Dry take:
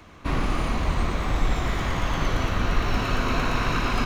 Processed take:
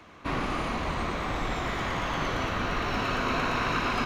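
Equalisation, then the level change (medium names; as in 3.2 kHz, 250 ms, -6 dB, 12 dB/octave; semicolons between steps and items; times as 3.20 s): bass shelf 78 Hz -11.5 dB; bass shelf 350 Hz -3.5 dB; treble shelf 6.2 kHz -8.5 dB; 0.0 dB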